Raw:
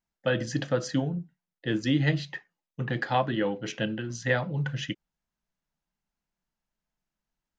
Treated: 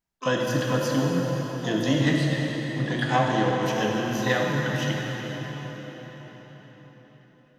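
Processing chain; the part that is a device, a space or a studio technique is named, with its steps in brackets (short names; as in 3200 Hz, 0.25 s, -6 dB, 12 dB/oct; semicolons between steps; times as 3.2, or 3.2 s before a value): shimmer-style reverb (harmoniser +12 st -9 dB; reverb RT60 5.4 s, pre-delay 3 ms, DRR -2 dB)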